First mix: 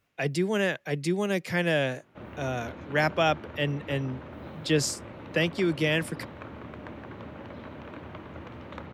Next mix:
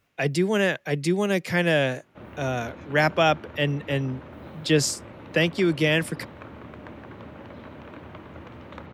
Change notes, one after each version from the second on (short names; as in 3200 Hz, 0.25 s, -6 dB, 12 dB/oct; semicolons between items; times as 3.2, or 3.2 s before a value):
speech +4.0 dB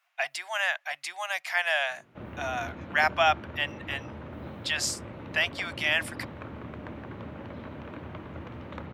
speech: add elliptic high-pass 690 Hz, stop band 40 dB; master: add tone controls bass +3 dB, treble -3 dB